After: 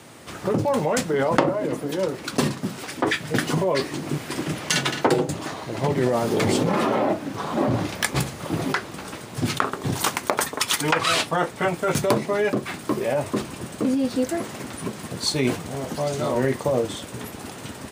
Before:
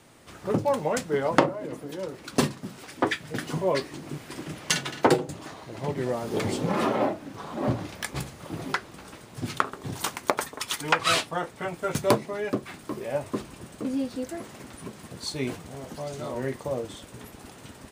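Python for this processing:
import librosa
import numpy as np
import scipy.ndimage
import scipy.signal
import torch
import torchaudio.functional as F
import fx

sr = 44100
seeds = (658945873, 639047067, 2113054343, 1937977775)

p1 = scipy.signal.sosfilt(scipy.signal.butter(2, 79.0, 'highpass', fs=sr, output='sos'), x)
p2 = fx.over_compress(p1, sr, threshold_db=-29.0, ratio=-0.5)
y = p1 + (p2 * librosa.db_to_amplitude(3.0))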